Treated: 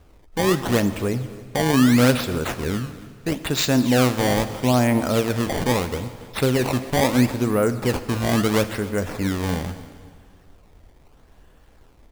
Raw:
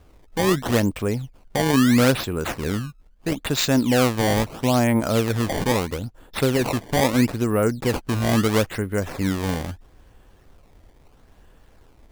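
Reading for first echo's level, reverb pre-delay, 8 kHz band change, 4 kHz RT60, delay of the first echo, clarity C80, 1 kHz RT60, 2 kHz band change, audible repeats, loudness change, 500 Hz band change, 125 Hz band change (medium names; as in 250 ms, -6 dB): -19.5 dB, 5 ms, +0.5 dB, 1.7 s, 275 ms, 12.5 dB, 1.8 s, +0.5 dB, 2, +0.5 dB, +0.5 dB, +0.5 dB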